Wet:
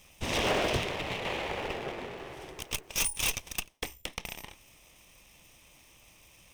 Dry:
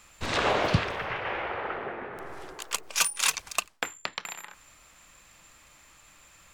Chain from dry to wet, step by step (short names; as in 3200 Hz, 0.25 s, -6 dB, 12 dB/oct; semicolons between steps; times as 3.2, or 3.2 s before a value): minimum comb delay 0.35 ms; wavefolder -21 dBFS